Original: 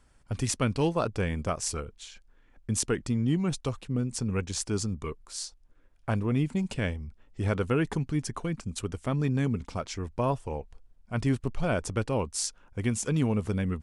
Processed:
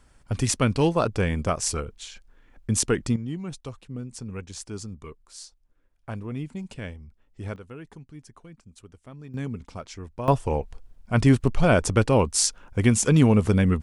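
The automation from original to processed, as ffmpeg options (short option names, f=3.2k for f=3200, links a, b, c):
-af "asetnsamples=n=441:p=0,asendcmd='3.16 volume volume -6dB;7.56 volume volume -15dB;9.34 volume volume -4dB;10.28 volume volume 9dB',volume=5dB"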